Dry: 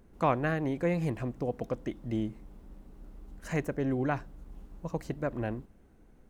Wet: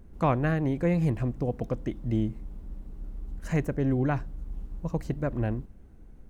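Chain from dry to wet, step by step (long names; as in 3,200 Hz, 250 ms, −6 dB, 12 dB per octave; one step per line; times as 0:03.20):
low-shelf EQ 180 Hz +11.5 dB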